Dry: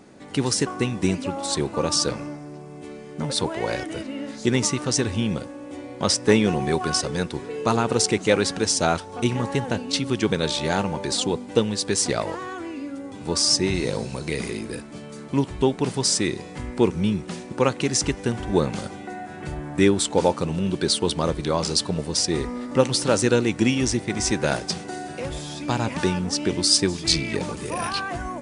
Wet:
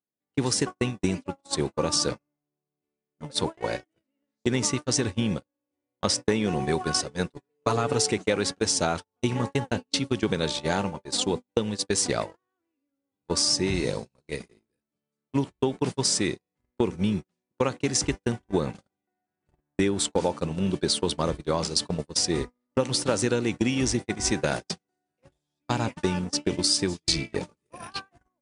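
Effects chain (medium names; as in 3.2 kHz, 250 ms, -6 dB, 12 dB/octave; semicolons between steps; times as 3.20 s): gate -24 dBFS, range -49 dB; 7.28–8.12 s: comb 7 ms, depth 70%; compression 6:1, threshold -20 dBFS, peak gain reduction 9 dB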